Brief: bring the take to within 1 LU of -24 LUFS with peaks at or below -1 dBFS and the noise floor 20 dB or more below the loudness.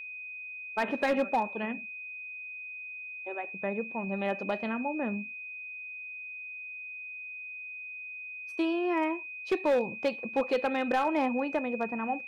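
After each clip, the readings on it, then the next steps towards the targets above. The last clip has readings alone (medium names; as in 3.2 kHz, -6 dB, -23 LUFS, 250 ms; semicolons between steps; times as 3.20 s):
clipped samples 0.5%; clipping level -21.0 dBFS; steady tone 2.5 kHz; tone level -39 dBFS; loudness -32.5 LUFS; peak level -21.0 dBFS; loudness target -24.0 LUFS
-> clip repair -21 dBFS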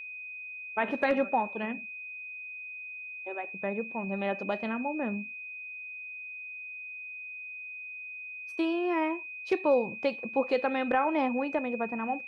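clipped samples 0.0%; steady tone 2.5 kHz; tone level -39 dBFS
-> band-stop 2.5 kHz, Q 30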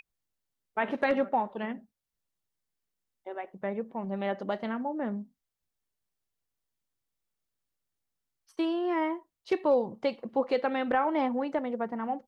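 steady tone not found; loudness -31.0 LUFS; peak level -14.0 dBFS; loudness target -24.0 LUFS
-> trim +7 dB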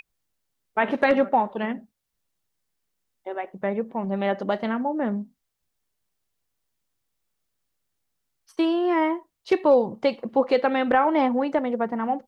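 loudness -24.0 LUFS; peak level -7.0 dBFS; noise floor -79 dBFS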